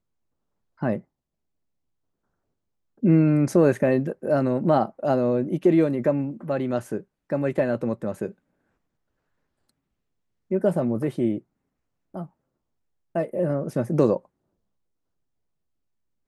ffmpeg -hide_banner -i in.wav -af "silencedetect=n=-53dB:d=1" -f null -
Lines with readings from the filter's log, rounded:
silence_start: 1.02
silence_end: 2.98 | silence_duration: 1.95
silence_start: 8.34
silence_end: 9.69 | silence_duration: 1.36
silence_start: 14.26
silence_end: 16.27 | silence_duration: 2.01